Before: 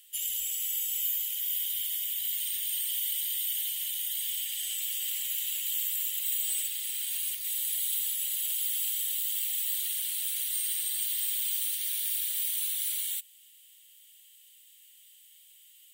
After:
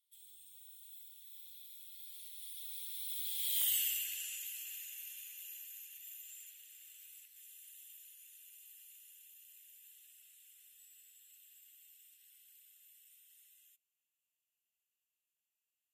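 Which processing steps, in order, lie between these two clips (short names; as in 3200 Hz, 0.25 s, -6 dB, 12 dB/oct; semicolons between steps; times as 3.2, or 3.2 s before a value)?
Doppler pass-by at 3.66, 38 m/s, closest 6.7 m; wavefolder -25 dBFS; gain +1 dB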